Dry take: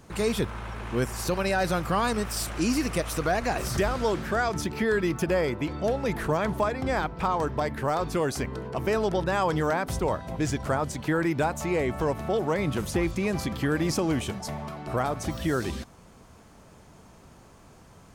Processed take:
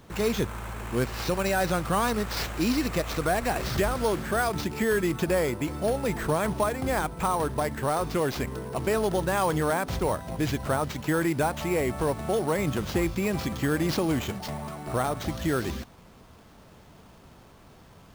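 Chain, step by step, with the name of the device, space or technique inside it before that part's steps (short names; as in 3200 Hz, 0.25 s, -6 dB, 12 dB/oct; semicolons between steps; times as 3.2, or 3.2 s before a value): early companding sampler (sample-rate reducer 9800 Hz, jitter 0%; companded quantiser 6-bit)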